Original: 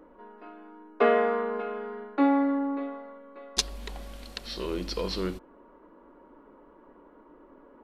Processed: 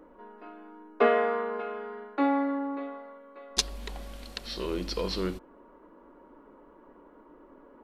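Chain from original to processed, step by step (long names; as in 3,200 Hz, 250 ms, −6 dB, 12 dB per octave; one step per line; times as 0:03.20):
0:01.07–0:03.51: low-shelf EQ 240 Hz −9.5 dB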